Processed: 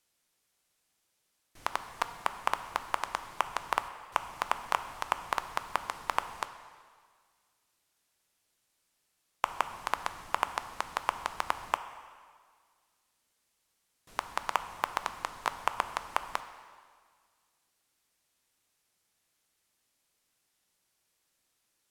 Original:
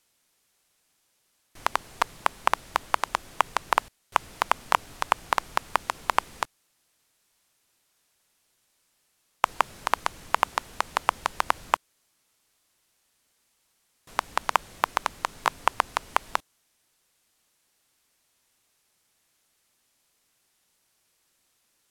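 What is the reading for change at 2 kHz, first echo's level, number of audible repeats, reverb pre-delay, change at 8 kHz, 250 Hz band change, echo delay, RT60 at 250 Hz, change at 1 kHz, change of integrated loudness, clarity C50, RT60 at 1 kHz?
−6.5 dB, no echo audible, no echo audible, 4 ms, −6.5 dB, −6.5 dB, no echo audible, 1.8 s, −6.5 dB, −6.5 dB, 11.0 dB, 1.8 s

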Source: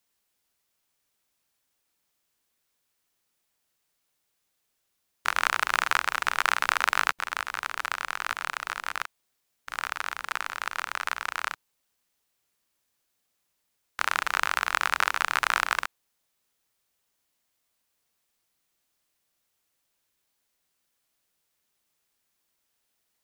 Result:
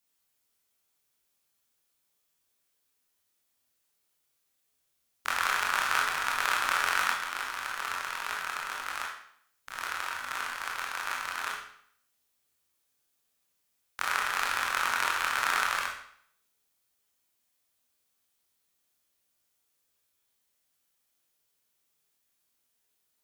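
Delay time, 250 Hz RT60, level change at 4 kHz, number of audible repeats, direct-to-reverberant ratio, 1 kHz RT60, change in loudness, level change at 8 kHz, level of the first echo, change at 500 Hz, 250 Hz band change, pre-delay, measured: no echo audible, 0.65 s, −1.5 dB, no echo audible, −2.5 dB, 0.65 s, −2.0 dB, 0.0 dB, no echo audible, −2.5 dB, −2.0 dB, 22 ms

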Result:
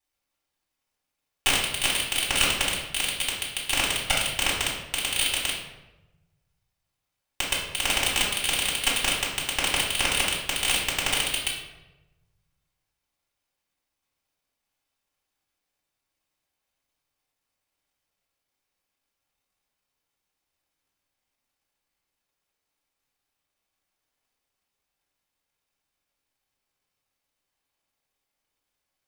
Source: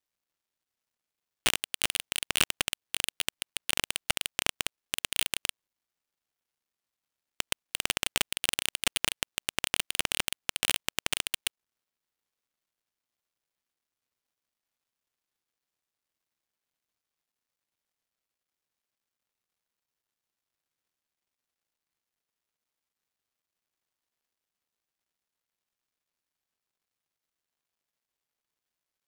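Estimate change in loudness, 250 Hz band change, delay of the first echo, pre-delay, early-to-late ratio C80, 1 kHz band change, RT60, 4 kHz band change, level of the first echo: +6.0 dB, +7.0 dB, no echo audible, 3 ms, 5.5 dB, +7.5 dB, 1.0 s, +6.5 dB, no echo audible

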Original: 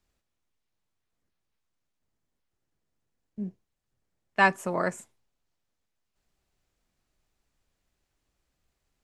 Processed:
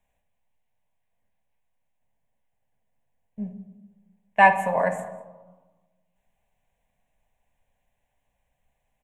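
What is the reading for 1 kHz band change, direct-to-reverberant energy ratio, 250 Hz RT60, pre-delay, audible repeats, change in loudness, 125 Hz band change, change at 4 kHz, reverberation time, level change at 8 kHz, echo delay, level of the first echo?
+8.0 dB, 7.0 dB, 1.5 s, 4 ms, 1, +6.5 dB, +1.5 dB, −1.0 dB, 1.3 s, can't be measured, 197 ms, −22.0 dB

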